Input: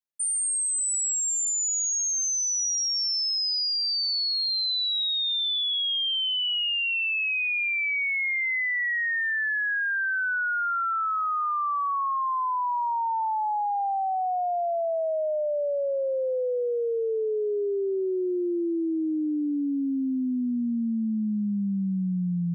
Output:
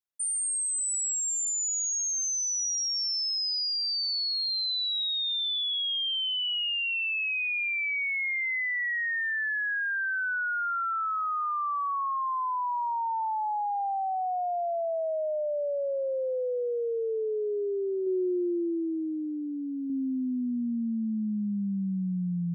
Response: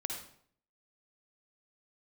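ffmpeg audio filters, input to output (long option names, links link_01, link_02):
-filter_complex "[0:a]asettb=1/sr,asplit=3[link_01][link_02][link_03];[link_01]atrim=end=18.064[link_04];[link_02]atrim=start=18.06:end=19.9,asetpts=PTS-STARTPTS,afade=type=in:duration=0.004:curve=qsin,afade=type=out:start_time=1.836:duration=0.004:curve=qsin,aecho=1:1:5.2:0.37,atrim=end_sample=81144[link_05];[link_03]atrim=start=19.896[link_06];[link_04][link_05]acrossfade=duration=0.004:curve1=hsin:curve2=qsin[link_07];[link_07][link_06]acrossfade=duration=0.004:curve1=qsin:curve2=hsin,volume=-3dB"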